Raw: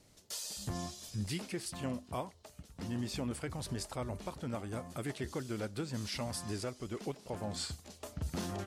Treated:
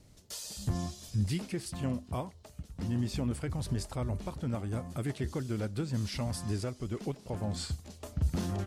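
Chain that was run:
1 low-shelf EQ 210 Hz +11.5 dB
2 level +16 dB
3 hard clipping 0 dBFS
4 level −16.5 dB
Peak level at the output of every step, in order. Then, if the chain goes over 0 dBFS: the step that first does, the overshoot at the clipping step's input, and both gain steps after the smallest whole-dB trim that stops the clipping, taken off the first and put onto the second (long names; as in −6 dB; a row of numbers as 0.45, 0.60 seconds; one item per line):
−19.5, −3.5, −3.5, −20.0 dBFS
no step passes full scale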